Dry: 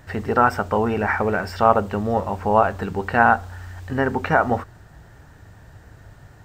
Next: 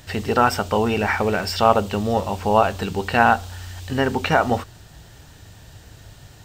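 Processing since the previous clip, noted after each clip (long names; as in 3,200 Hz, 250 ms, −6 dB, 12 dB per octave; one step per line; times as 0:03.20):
high shelf with overshoot 2,300 Hz +9.5 dB, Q 1.5
level +1 dB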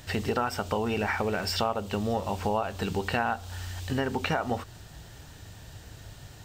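downward compressor 5 to 1, threshold −23 dBFS, peak gain reduction 13 dB
level −2 dB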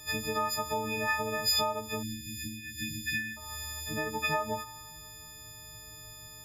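every partial snapped to a pitch grid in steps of 6 semitones
tuned comb filter 59 Hz, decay 1.6 s, harmonics all, mix 60%
time-frequency box erased 0:02.03–0:03.37, 400–1,700 Hz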